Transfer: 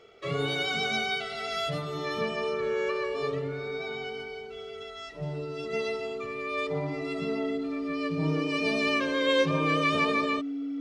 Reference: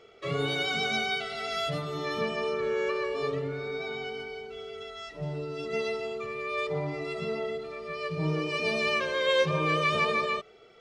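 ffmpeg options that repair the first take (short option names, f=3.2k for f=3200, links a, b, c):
-af "bandreject=f=280:w=30"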